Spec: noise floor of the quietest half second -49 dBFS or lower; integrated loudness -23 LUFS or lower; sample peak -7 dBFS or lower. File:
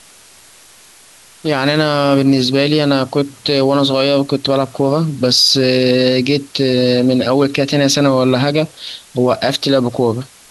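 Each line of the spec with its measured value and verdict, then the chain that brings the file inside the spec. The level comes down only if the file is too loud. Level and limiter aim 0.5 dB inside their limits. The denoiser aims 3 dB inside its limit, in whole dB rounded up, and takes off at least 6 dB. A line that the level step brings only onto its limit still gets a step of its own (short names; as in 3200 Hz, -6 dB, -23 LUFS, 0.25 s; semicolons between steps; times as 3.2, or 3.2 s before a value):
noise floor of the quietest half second -44 dBFS: fail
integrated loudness -14.0 LUFS: fail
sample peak -2.5 dBFS: fail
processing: gain -9.5 dB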